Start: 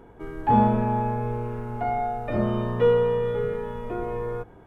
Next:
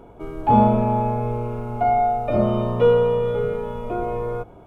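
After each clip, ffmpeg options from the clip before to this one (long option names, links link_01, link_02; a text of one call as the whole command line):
ffmpeg -i in.wav -af "superequalizer=8b=1.78:11b=0.316,volume=3.5dB" out.wav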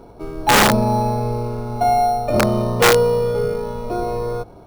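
ffmpeg -i in.wav -filter_complex "[0:a]asplit=2[link_01][link_02];[link_02]acrusher=samples=9:mix=1:aa=0.000001,volume=-8.5dB[link_03];[link_01][link_03]amix=inputs=2:normalize=0,aeval=exprs='(mod(2.11*val(0)+1,2)-1)/2.11':channel_layout=same" out.wav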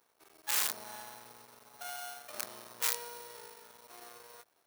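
ffmpeg -i in.wav -af "aeval=exprs='max(val(0),0)':channel_layout=same,aderivative,volume=-6dB" out.wav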